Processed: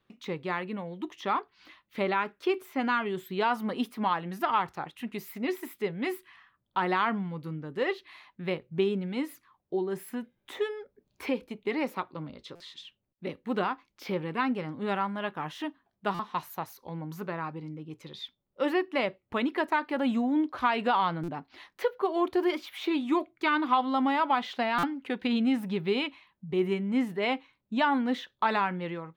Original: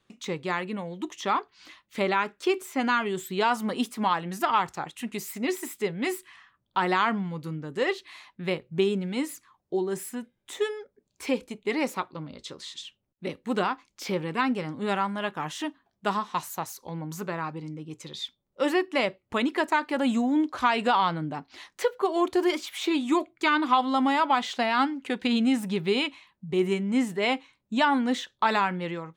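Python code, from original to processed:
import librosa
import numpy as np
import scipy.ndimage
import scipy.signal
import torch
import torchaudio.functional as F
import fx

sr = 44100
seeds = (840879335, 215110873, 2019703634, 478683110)

y = fx.peak_eq(x, sr, hz=7600.0, db=-15.0, octaves=1.0)
y = fx.buffer_glitch(y, sr, at_s=(12.55, 16.14, 21.23, 24.78), block=256, repeats=8)
y = fx.band_squash(y, sr, depth_pct=40, at=(10.08, 12.3))
y = y * librosa.db_to_amplitude(-2.5)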